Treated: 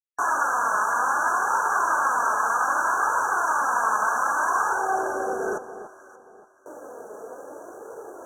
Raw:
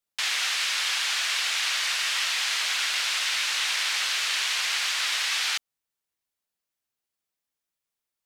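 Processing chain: recorder AGC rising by 38 dB/s; gate with hold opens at -46 dBFS; steep high-pass 270 Hz 72 dB/octave; sine folder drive 10 dB, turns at -12 dBFS; 4.72–5.53 s: robot voice 385 Hz; fuzz box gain 37 dB, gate -43 dBFS; flange 0.63 Hz, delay 2 ms, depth 2.8 ms, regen +32%; band-pass sweep 1 kHz -> 480 Hz, 4.64–5.23 s; brick-wall FIR band-stop 1.7–5.7 kHz; on a send: echo whose repeats swap between lows and highs 289 ms, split 1.1 kHz, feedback 53%, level -10.5 dB; on the sum: trim +9 dB

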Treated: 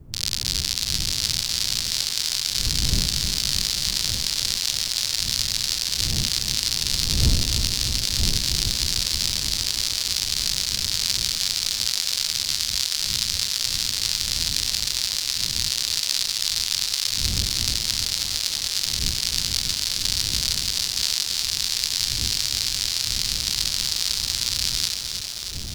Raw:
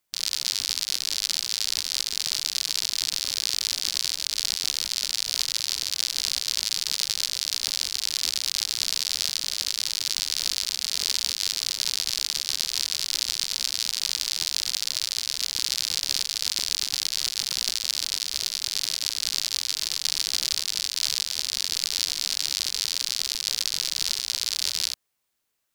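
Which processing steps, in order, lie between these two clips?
wind noise 100 Hz -35 dBFS; bit-crushed delay 314 ms, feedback 80%, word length 7-bit, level -7 dB; trim +1.5 dB

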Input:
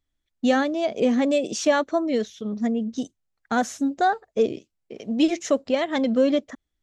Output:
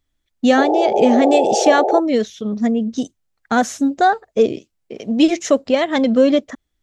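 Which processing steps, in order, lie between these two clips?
painted sound noise, 0.57–2.00 s, 350–890 Hz -24 dBFS; trim +6.5 dB

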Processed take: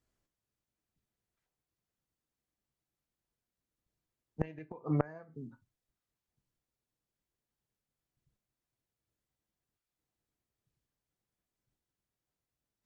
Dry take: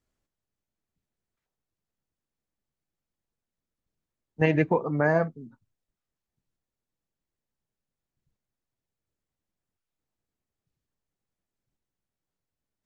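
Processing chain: gated-style reverb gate 90 ms falling, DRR 10 dB; inverted gate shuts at -13 dBFS, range -25 dB; Chebyshev shaper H 3 -24 dB, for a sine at -11 dBFS

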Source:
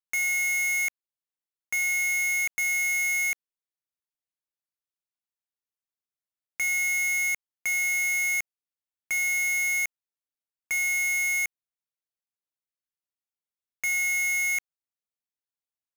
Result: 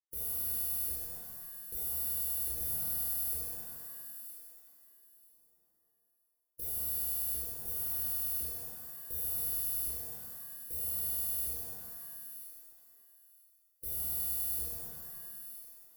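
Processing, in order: local Wiener filter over 15 samples; reverse; upward compressor, threshold -53 dBFS; reverse; brick-wall FIR band-stop 530–9700 Hz; bass shelf 360 Hz +4.5 dB; static phaser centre 910 Hz, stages 6; spectral gate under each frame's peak -10 dB weak; waveshaping leveller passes 1; treble shelf 4.6 kHz +4 dB; on a send: thinning echo 976 ms, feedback 17%, high-pass 970 Hz, level -12 dB; on the sum: pitch-shifted reverb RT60 1.3 s, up +7 st, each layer -2 dB, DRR -6.5 dB

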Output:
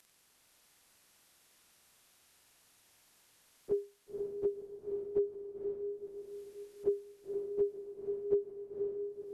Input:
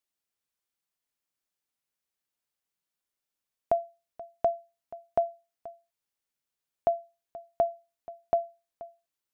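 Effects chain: frequency-domain pitch shifter -9 st; upward compressor, threshold -42 dBFS; echo that smears into a reverb 520 ms, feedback 47%, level -4 dB; trim -5 dB

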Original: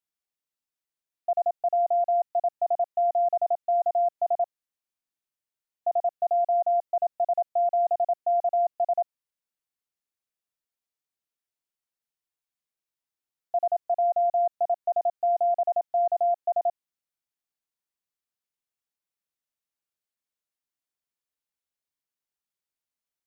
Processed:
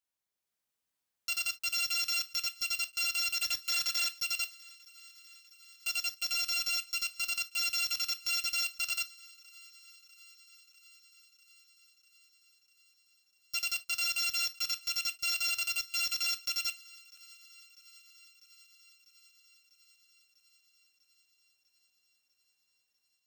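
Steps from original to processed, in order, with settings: bit-reversed sample order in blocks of 256 samples; 3.38–4.08 s: waveshaping leveller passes 3; 5.89–7.41 s: high-pass 420 Hz 12 dB/octave; peak limiter -25 dBFS, peak gain reduction 8.5 dB; level rider gain up to 4.5 dB; saturation -30 dBFS, distortion -12 dB; thinning echo 647 ms, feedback 75%, high-pass 760 Hz, level -23 dB; gated-style reverb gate 90 ms falling, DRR 9 dB; crackling interface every 0.92 s, samples 512, repeat, from 0.60 s

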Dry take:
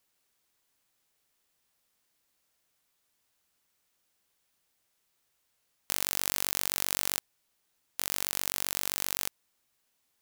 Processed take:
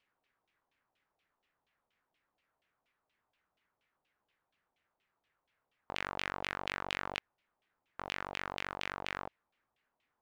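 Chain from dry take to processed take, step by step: LFO low-pass saw down 4.2 Hz 690–3100 Hz; trim -2 dB

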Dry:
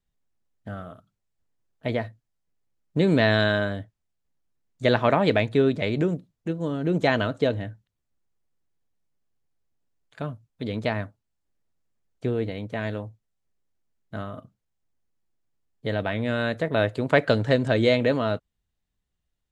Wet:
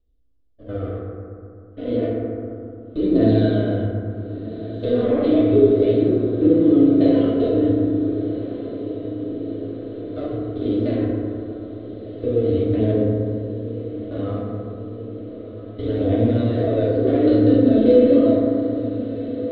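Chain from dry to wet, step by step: spectrogram pixelated in time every 100 ms; high-order bell 1.9 kHz -14 dB 1.1 oct; waveshaping leveller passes 1; in parallel at +1.5 dB: compression, threshold -31 dBFS, peak gain reduction 15 dB; on the sum: peak limiter -15.5 dBFS, peak gain reduction 8.5 dB; static phaser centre 370 Hz, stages 4; phaser 0.31 Hz, delay 4.6 ms, feedback 48%; 15.87–16.43 s: added noise pink -52 dBFS; distance through air 360 m; echo that smears into a reverb 1408 ms, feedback 71%, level -13 dB; FDN reverb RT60 2.5 s, low-frequency decay 1.2×, high-frequency decay 0.3×, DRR -6 dB; trim +1 dB

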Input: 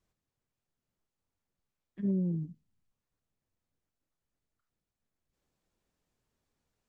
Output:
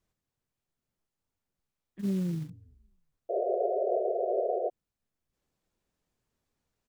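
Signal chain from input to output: frequency-shifting echo 214 ms, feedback 41%, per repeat -50 Hz, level -21.5 dB; 1.99–2.50 s: companded quantiser 6-bit; 3.29–4.70 s: painted sound noise 360–740 Hz -29 dBFS

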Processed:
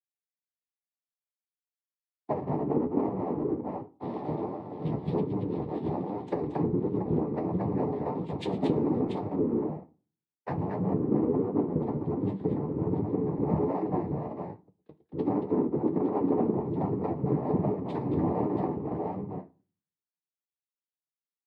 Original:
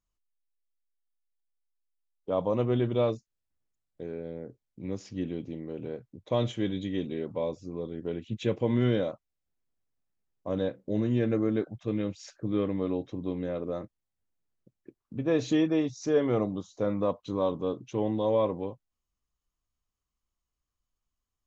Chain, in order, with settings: elliptic band-pass 180–2800 Hz; low-pass that closes with the level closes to 300 Hz, closed at -27 dBFS; bass shelf 410 Hz +10 dB; multi-tap echo 112/229/682/739 ms -14.5/-3/-5.5/-20 dB; compression 6:1, threshold -28 dBFS, peak gain reduction 11 dB; noise-vocoded speech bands 6; vibrato 7.3 Hz 15 cents; flange 1.3 Hz, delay 9.5 ms, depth 4.5 ms, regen +51%; reverberation RT60 0.45 s, pre-delay 7 ms, DRR 10.5 dB; three bands expanded up and down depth 70%; trim +7 dB

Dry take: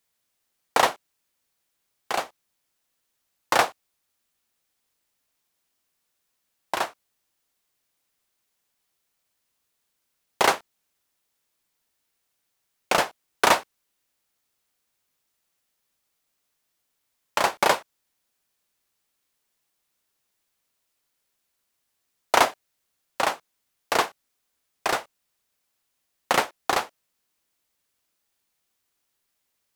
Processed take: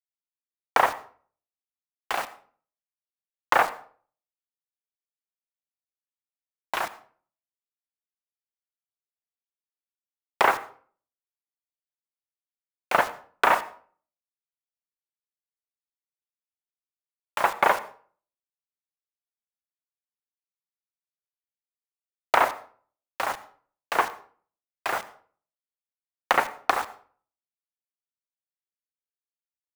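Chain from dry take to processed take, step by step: median filter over 9 samples; tilt shelf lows -7.5 dB, about 830 Hz; low-pass that closes with the level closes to 1.8 kHz, closed at -20 dBFS; in parallel at -2 dB: peak limiter -13 dBFS, peak gain reduction 9 dB; on the sum: treble shelf 2.9 kHz -4.5 dB; level held to a coarse grid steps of 9 dB; bit crusher 6-bit; on a send at -16.5 dB: reverberation RT60 0.45 s, pre-delay 73 ms

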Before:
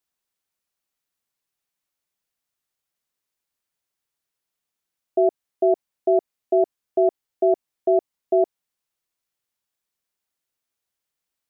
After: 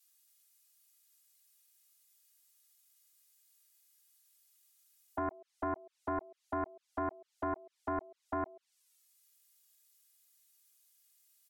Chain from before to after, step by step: high-pass 410 Hz; low-pass that closes with the level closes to 660 Hz, closed at -19.5 dBFS; differentiator; in parallel at -2 dB: compressor with a negative ratio -50 dBFS, ratio -1; on the sum: touch-sensitive flanger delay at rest 2.6 ms, full sweep at -42.5 dBFS; on a send: delay 135 ms -21 dB; on the sum: loudspeaker Doppler distortion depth 0.46 ms; trim +8.5 dB

